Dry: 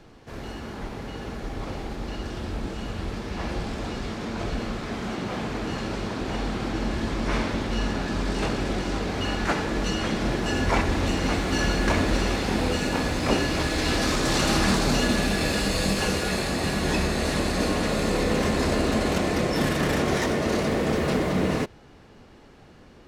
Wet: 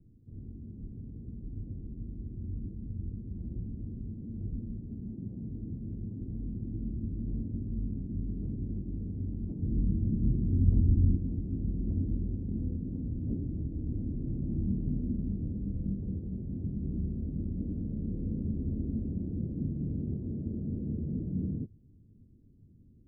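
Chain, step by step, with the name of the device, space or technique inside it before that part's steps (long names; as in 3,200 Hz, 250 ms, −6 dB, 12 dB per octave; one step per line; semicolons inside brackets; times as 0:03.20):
the neighbour's flat through the wall (low-pass filter 270 Hz 24 dB per octave; parametric band 100 Hz +7 dB 0.61 octaves)
0:09.62–0:11.17: low-shelf EQ 270 Hz +8.5 dB
level −7.5 dB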